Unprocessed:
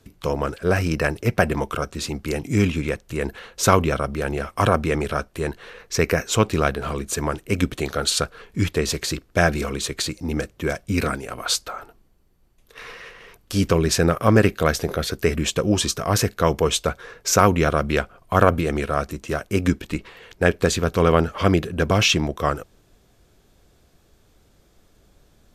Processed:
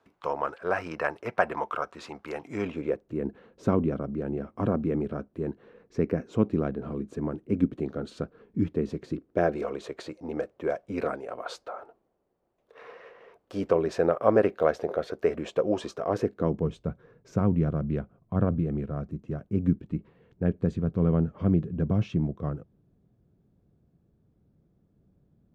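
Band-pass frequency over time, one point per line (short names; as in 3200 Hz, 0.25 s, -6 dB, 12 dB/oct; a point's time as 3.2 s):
band-pass, Q 1.5
2.5 s 950 Hz
3.23 s 240 Hz
9.12 s 240 Hz
9.64 s 590 Hz
15.97 s 590 Hz
16.7 s 160 Hz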